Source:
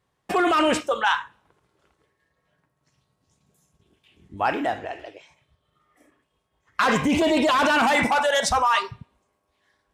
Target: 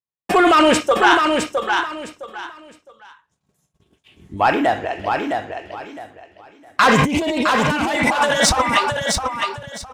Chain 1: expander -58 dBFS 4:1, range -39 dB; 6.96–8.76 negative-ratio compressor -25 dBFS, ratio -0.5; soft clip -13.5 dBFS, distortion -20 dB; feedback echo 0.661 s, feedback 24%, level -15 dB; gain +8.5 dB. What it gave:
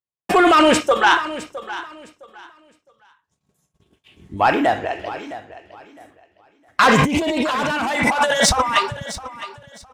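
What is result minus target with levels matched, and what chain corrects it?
echo-to-direct -10 dB
expander -58 dBFS 4:1, range -39 dB; 6.96–8.76 negative-ratio compressor -25 dBFS, ratio -0.5; soft clip -13.5 dBFS, distortion -20 dB; feedback echo 0.661 s, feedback 24%, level -5 dB; gain +8.5 dB

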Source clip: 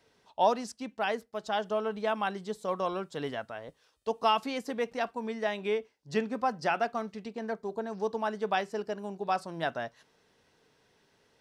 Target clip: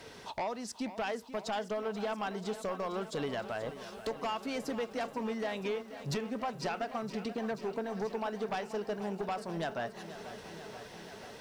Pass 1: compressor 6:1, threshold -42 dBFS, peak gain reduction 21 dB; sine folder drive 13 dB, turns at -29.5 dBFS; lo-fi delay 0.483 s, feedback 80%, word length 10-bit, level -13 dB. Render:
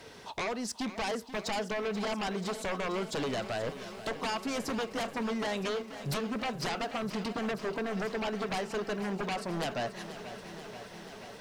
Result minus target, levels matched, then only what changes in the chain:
compressor: peak gain reduction -6 dB
change: compressor 6:1, threshold -49.5 dBFS, peak gain reduction 27 dB

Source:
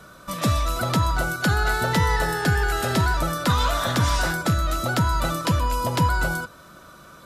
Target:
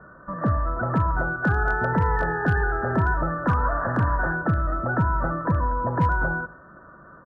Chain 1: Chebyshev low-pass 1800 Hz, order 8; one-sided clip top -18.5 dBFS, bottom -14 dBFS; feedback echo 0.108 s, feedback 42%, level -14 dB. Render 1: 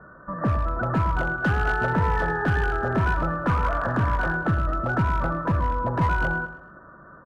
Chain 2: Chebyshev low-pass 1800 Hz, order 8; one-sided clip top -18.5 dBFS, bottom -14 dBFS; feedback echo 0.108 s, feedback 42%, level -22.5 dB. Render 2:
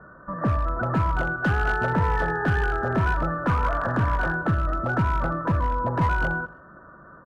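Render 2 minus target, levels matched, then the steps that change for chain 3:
one-sided clip: distortion +4 dB
change: one-sided clip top -12 dBFS, bottom -14 dBFS

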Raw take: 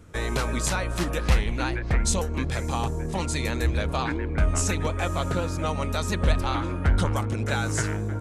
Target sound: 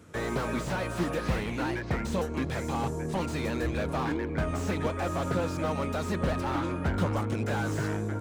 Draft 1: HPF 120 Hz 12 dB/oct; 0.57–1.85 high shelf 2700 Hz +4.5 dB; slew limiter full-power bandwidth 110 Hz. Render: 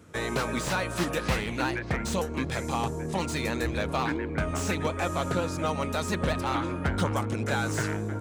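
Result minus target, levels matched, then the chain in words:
slew limiter: distortion -6 dB
HPF 120 Hz 12 dB/oct; 0.57–1.85 high shelf 2700 Hz +4.5 dB; slew limiter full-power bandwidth 37 Hz

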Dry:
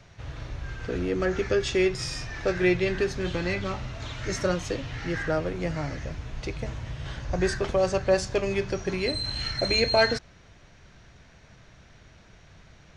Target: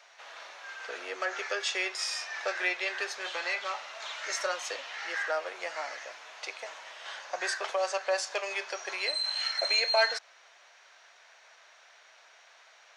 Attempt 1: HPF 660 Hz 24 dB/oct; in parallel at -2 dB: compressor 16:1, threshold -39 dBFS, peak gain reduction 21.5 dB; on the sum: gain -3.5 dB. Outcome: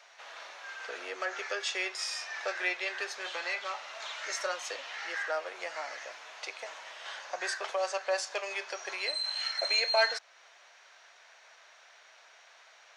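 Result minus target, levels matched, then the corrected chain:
compressor: peak gain reduction +8.5 dB
HPF 660 Hz 24 dB/oct; in parallel at -2 dB: compressor 16:1, threshold -30 dBFS, peak gain reduction 13 dB; on the sum: gain -3.5 dB

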